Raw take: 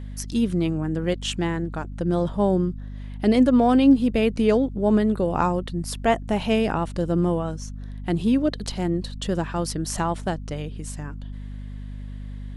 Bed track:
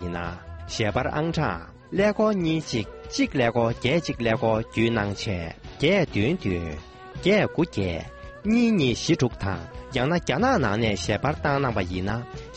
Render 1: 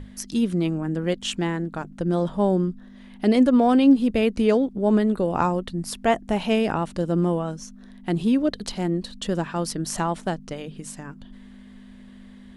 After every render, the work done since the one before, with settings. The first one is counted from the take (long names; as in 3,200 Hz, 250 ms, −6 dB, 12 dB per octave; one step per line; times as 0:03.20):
mains-hum notches 50/100/150 Hz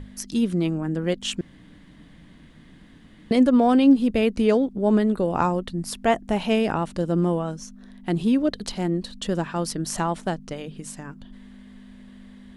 0:01.41–0:03.31: fill with room tone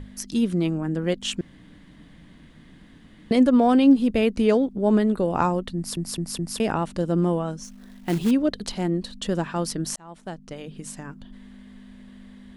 0:05.76: stutter in place 0.21 s, 4 plays
0:07.64–0:08.31: floating-point word with a short mantissa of 2 bits
0:09.96–0:10.87: fade in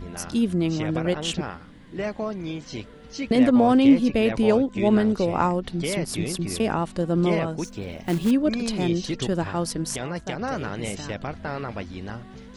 mix in bed track −8 dB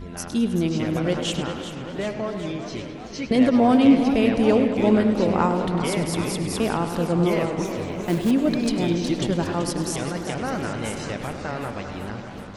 tape delay 102 ms, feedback 81%, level −9 dB, low-pass 5,500 Hz
feedback echo with a swinging delay time 386 ms, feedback 67%, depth 166 cents, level −11 dB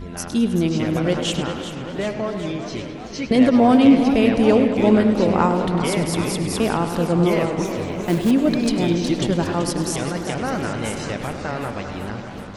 level +3 dB
brickwall limiter −3 dBFS, peak gain reduction 1.5 dB